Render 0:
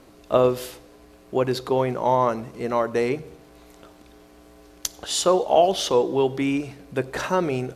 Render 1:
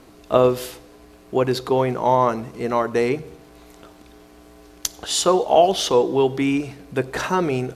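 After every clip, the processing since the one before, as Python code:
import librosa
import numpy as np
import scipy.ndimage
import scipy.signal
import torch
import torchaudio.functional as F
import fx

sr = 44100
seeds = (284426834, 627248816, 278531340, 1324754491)

y = fx.notch(x, sr, hz=560.0, q=12.0)
y = y * librosa.db_to_amplitude(3.0)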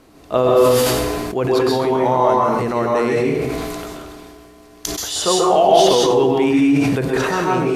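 y = fx.rev_plate(x, sr, seeds[0], rt60_s=0.66, hf_ratio=0.8, predelay_ms=120, drr_db=-2.5)
y = fx.sustainer(y, sr, db_per_s=22.0)
y = y * librosa.db_to_amplitude(-2.0)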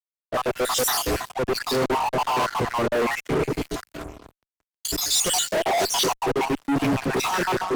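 y = fx.spec_dropout(x, sr, seeds[1], share_pct=60)
y = fx.fuzz(y, sr, gain_db=31.0, gate_db=-36.0)
y = fx.band_widen(y, sr, depth_pct=70)
y = y * librosa.db_to_amplitude(-7.0)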